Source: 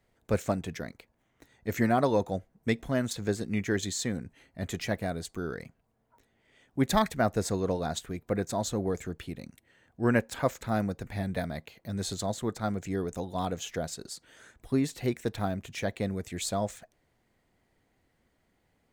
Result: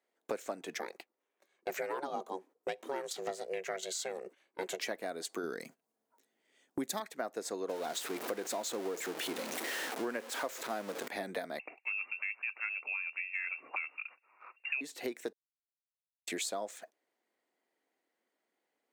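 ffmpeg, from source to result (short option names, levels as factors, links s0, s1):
-filter_complex "[0:a]asettb=1/sr,asplit=3[s0][s1][s2];[s0]atrim=end=0.784[s3];[s1]atrim=start=0.78:end=4.83,asetpts=PTS-STARTPTS,afade=t=in:d=0.004:c=qsin,afade=t=out:st=4.046:d=0.004:c=qsin,aeval=exprs='val(0)*sin(2*PI*280*n/s)':c=same[s4];[s2]atrim=start=4.826[s5];[s3][s4]acrossfade=d=0.004:c1=hsin:c2=qsin[s6];[s6][s5]acrossfade=d=0.004:c1=qsin:c2=hsin,asettb=1/sr,asplit=3[s7][s8][s9];[s7]atrim=end=5.434[s10];[s8]atrim=start=5.43:end=7,asetpts=PTS-STARTPTS,afade=t=in:d=0.004:c=qsin,afade=t=out:st=1.566:d=0.004:c=qsin,bass=f=250:g=11,treble=f=4000:g=9[s11];[s9]atrim=start=6.996[s12];[s10][s11]acrossfade=d=0.004:c1=hsin:c2=qsin[s13];[s13][s12]acrossfade=d=0.004:c1=qsin:c2=hsin,asettb=1/sr,asplit=3[s14][s15][s16];[s14]atrim=end=7.694[s17];[s15]atrim=start=7.69:end=11.08,asetpts=PTS-STARTPTS,afade=t=in:d=0.004:c=qsin,afade=t=out:st=3.386:d=0.004:c=qsin,aeval=exprs='val(0)+0.5*0.0251*sgn(val(0))':c=same[s18];[s16]atrim=start=11.076[s19];[s17][s18]acrossfade=d=0.004:c1=hsin:c2=qsin[s20];[s20][s19]acrossfade=d=0.004:c1=qsin:c2=hsin,asettb=1/sr,asplit=3[s21][s22][s23];[s21]atrim=end=11.594[s24];[s22]atrim=start=11.59:end=14.81,asetpts=PTS-STARTPTS,afade=t=in:d=0.004:c=qsin,afade=t=out:st=3.216:d=0.004:c=qsin,lowpass=f=2400:t=q:w=0.5098,lowpass=f=2400:t=q:w=0.6013,lowpass=f=2400:t=q:w=0.9,lowpass=f=2400:t=q:w=2.563,afreqshift=-2800[s25];[s23]atrim=start=14.806[s26];[s24][s25]acrossfade=d=0.004:c1=hsin:c2=qsin[s27];[s27][s26]acrossfade=d=0.004:c1=qsin:c2=hsin,asplit=3[s28][s29][s30];[s28]atrim=end=15.33,asetpts=PTS-STARTPTS,afade=t=out:st=15.326:d=0.004:c=hsin[s31];[s29]atrim=start=15.33:end=16.27,asetpts=PTS-STARTPTS,volume=0[s32];[s30]atrim=start=16.27,asetpts=PTS-STARTPTS,afade=t=in:d=0.004:c=hsin[s33];[s31][s32][s33]concat=n=3:v=0:a=1,highpass=f=300:w=0.5412,highpass=f=300:w=1.3066,agate=range=0.126:threshold=0.00224:ratio=16:detection=peak,acompressor=threshold=0.00631:ratio=8,volume=2.82"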